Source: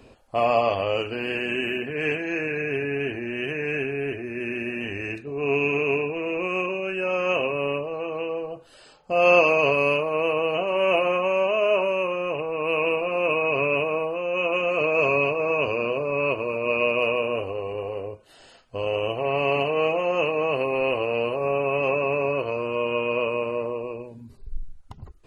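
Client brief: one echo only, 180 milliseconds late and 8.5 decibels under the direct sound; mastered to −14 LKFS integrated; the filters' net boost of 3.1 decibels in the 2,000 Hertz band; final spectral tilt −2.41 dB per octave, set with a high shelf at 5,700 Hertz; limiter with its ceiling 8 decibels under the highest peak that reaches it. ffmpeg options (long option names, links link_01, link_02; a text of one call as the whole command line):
ffmpeg -i in.wav -af "equalizer=frequency=2000:width_type=o:gain=3.5,highshelf=frequency=5700:gain=5,alimiter=limit=-12.5dB:level=0:latency=1,aecho=1:1:180:0.376,volume=9dB" out.wav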